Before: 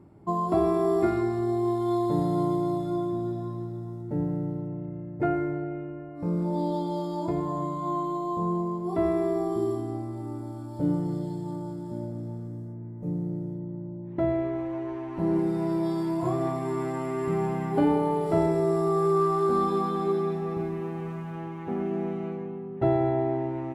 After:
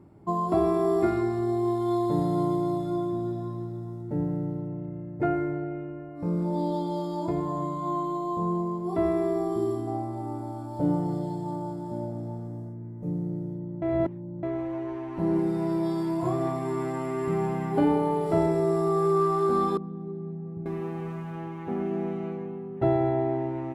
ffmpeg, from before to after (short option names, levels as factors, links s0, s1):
-filter_complex "[0:a]asettb=1/sr,asplit=3[s0][s1][s2];[s0]atrim=end=9.874[s3];[s1]atrim=start=9.87:end=12.69,asetpts=PTS-STARTPTS,afade=t=in:d=0.004:c=qsin,afade=t=out:st=2.816:d=0.004:c=qsin,equalizer=f=770:w=1.8:g=9.5[s4];[s2]atrim=start=12.686[s5];[s3][s4]acrossfade=d=0.004:c1=hsin:c2=qsin[s6];[s6][s5]acrossfade=d=0.004:c1=qsin:c2=hsin,asettb=1/sr,asplit=3[s7][s8][s9];[s7]atrim=end=19.774[s10];[s8]atrim=start=19.77:end=20.66,asetpts=PTS-STARTPTS,afade=t=in:d=0.004:c=qsin,afade=t=out:st=0.886:d=0.004:c=qsin,bandpass=f=130:t=q:w=1.5[s11];[s9]atrim=start=20.656[s12];[s10][s11]acrossfade=d=0.004:c1=hsin:c2=qsin[s13];[s13][s12]acrossfade=d=0.004:c1=qsin:c2=hsin,asplit=3[s14][s15][s16];[s14]atrim=end=13.822[s17];[s15]atrim=start=13.818:end=14.432,asetpts=PTS-STARTPTS,areverse[s18];[s16]atrim=start=14.428[s19];[s17][s18]acrossfade=d=0.004:c1=hsin:c2=hsin[s20];[s20][s19]acrossfade=d=0.004:c1=hsin:c2=hsin"